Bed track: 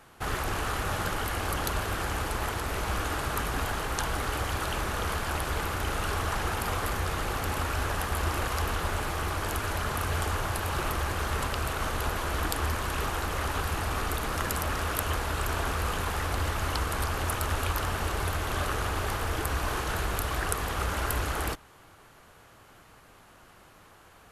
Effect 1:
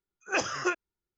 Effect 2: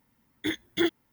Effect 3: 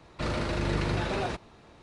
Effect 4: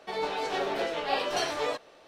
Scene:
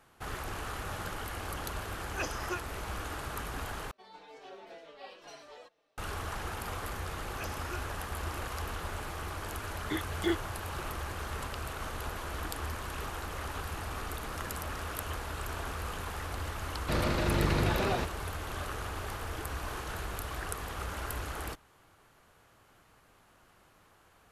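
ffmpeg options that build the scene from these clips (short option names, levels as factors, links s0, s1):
-filter_complex "[1:a]asplit=2[s0][s1];[0:a]volume=0.398[s2];[4:a]asplit=2[s3][s4];[s4]adelay=4.6,afreqshift=-2[s5];[s3][s5]amix=inputs=2:normalize=1[s6];[2:a]aemphasis=mode=reproduction:type=50fm[s7];[3:a]lowpass=9600[s8];[s2]asplit=2[s9][s10];[s9]atrim=end=3.914[s11];[s6]atrim=end=2.07,asetpts=PTS-STARTPTS,volume=0.141[s12];[s10]atrim=start=5.976[s13];[s0]atrim=end=1.17,asetpts=PTS-STARTPTS,volume=0.376,afade=t=in:d=0.004:c=hsin,afade=t=out:st=1.166:d=0.004:c=hsin,adelay=1850[s14];[s1]atrim=end=1.17,asetpts=PTS-STARTPTS,volume=0.168,afade=t=in:d=0.004:c=hsin,afade=t=out:st=1.166:d=0.004:c=hsin,adelay=311346S[s15];[s7]atrim=end=1.12,asetpts=PTS-STARTPTS,volume=0.562,afade=t=in:d=0.004:c=hsin,afade=t=out:st=1.116:d=0.004:c=hsin,adelay=417186S[s16];[s8]atrim=end=1.82,asetpts=PTS-STARTPTS,afade=t=in:d=0.004:c=hsin,afade=t=out:st=1.816:d=0.004:c=hsin,adelay=16690[s17];[s11][s12]acrossfade=d=0.004:c1=hsin:c2=hsin[s18];[s18][s13]acrossfade=d=0.004:c1=hsin:c2=hsin[s19];[s19][s14][s15][s16][s17]amix=inputs=5:normalize=0"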